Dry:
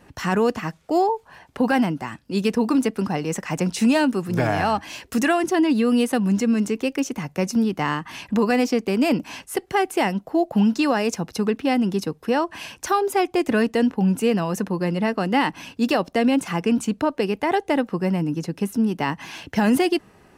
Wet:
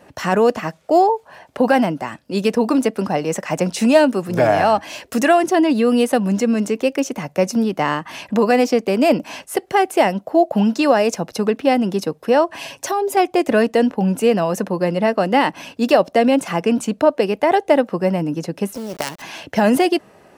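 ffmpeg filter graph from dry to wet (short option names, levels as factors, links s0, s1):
-filter_complex "[0:a]asettb=1/sr,asplit=3[s0][s1][s2];[s0]atrim=end=12.574[s3];[s1]atrim=start=12.57:end=13.17,asetpts=PTS-STARTPTS,afade=t=in:d=0.004:c=qsin,afade=t=out:st=0.596:d=0.004:c=qsin,equalizer=f=1400:t=o:w=0.32:g=-7.5,aecho=1:1:7.3:0.62,atrim=end_sample=26460,acompressor=threshold=0.0708:ratio=3:attack=3.2:release=140:knee=1:detection=peak[s4];[s2]atrim=start=13.166[s5];[s3][s4]acrossfade=d=0.004:c1=hsin:c2=qsin[s6];[s6][s5]acrossfade=d=0.004:c1=qsin:c2=hsin,asettb=1/sr,asplit=3[s7][s8][s9];[s7]atrim=end=18.754[s10];[s8]atrim=start=18.75:end=19.22,asetpts=PTS-STARTPTS,afade=t=in:d=0.004:c=qsin,afade=t=out:st=0.466:d=0.004:c=qsin,equalizer=f=5700:t=o:w=0.66:g=14,acompressor=threshold=0.0794:ratio=16:attack=3.2:release=140:knee=1:detection=peak,acrusher=bits=4:dc=4:mix=0:aa=0.000001[s11];[s9]atrim=start=19.216[s12];[s10][s11]acrossfade=d=0.004:c1=hsin:c2=qsin[s13];[s13][s12]acrossfade=d=0.004:c1=qsin:c2=hsin,highpass=f=150:p=1,equalizer=f=600:t=o:w=0.57:g=9,volume=1.41"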